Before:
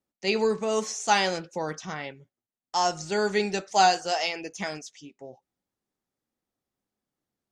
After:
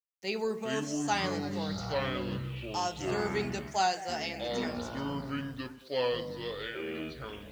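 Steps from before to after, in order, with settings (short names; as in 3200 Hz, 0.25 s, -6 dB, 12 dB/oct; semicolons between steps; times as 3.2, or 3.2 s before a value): echoes that change speed 0.291 s, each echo -7 st, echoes 3; bit-crush 9-bit; delay with a stepping band-pass 0.108 s, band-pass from 200 Hz, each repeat 1.4 oct, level -8 dB; gain -8.5 dB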